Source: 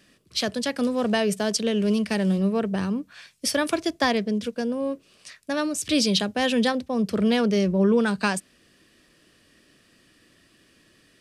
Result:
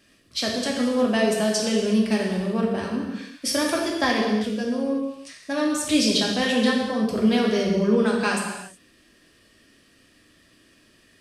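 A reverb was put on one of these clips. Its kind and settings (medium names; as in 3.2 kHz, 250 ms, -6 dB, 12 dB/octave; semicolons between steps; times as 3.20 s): gated-style reverb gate 400 ms falling, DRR -2 dB; trim -2.5 dB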